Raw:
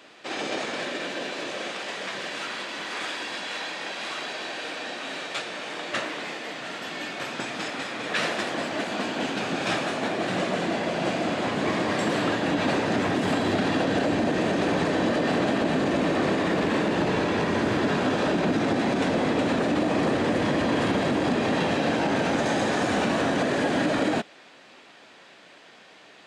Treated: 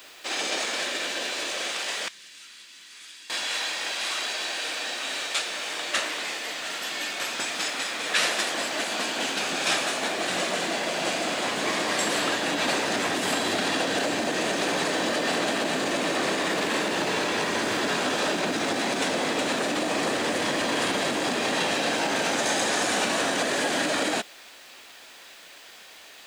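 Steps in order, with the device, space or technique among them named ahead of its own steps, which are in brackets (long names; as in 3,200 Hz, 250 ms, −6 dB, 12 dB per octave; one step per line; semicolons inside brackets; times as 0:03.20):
turntable without a phono preamp (RIAA equalisation recording; white noise bed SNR 30 dB)
0:02.08–0:03.30: guitar amp tone stack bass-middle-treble 6-0-2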